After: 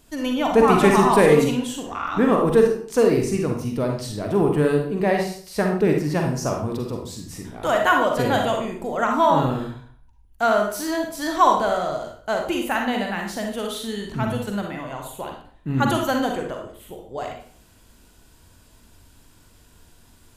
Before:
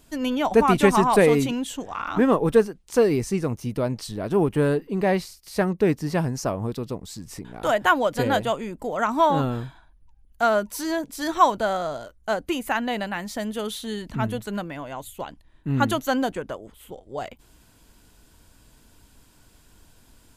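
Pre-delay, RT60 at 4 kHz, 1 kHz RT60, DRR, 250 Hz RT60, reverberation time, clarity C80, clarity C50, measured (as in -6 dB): 39 ms, 0.40 s, 0.50 s, 1.5 dB, 0.55 s, 0.50 s, 9.0 dB, 3.5 dB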